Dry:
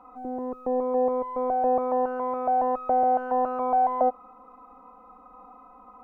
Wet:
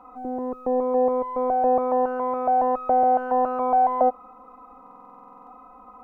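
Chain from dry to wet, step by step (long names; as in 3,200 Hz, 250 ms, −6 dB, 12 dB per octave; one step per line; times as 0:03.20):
buffer that repeats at 0:04.82, samples 2,048, times 13
level +3 dB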